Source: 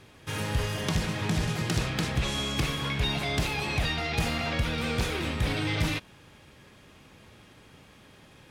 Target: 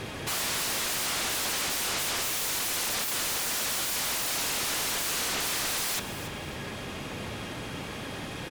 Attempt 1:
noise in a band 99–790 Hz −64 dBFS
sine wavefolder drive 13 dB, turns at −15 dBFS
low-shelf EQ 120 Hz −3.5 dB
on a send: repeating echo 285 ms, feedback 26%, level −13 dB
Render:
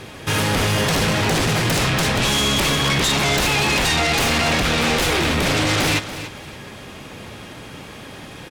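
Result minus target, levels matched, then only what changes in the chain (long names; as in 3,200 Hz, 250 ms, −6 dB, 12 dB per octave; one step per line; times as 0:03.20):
sine wavefolder: distortion −33 dB
change: sine wavefolder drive 13 dB, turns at −27 dBFS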